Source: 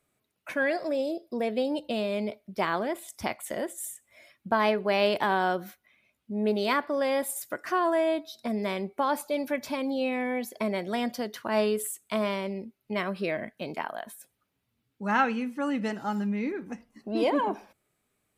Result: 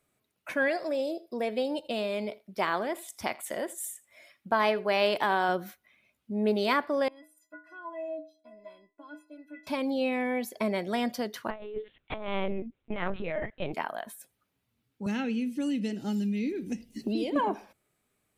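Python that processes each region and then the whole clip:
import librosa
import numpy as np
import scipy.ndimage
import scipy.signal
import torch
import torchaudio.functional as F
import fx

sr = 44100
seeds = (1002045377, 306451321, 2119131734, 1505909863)

y = fx.chain(x, sr, fx.low_shelf(hz=240.0, db=-8.0),
    fx.echo_single(ms=82, db=-21.5), at=(0.68, 5.49))
y = fx.chain(y, sr, fx.lowpass(hz=1700.0, slope=6),
    fx.stiff_resonator(f0_hz=300.0, decay_s=0.42, stiffness=0.03), at=(7.08, 9.67))
y = fx.chain(y, sr, fx.over_compress(threshold_db=-31.0, ratio=-0.5),
    fx.lpc_vocoder(seeds[0], excitation='pitch_kept', order=10), at=(11.5, 13.73))
y = fx.chain(y, sr, fx.curve_eq(hz=(370.0, 1100.0, 2900.0), db=(0, -23, -1)),
    fx.band_squash(depth_pct=100), at=(15.06, 17.36))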